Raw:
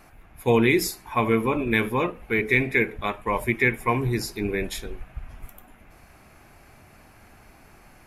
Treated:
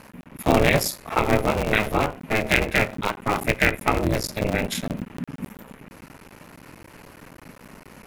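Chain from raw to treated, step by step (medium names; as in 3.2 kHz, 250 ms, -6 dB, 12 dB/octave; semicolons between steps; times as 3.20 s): cycle switcher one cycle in 3, muted; in parallel at 0 dB: compression, threshold -35 dBFS, peak gain reduction 18 dB; on the sum: ring modulator 210 Hz; trim +4.5 dB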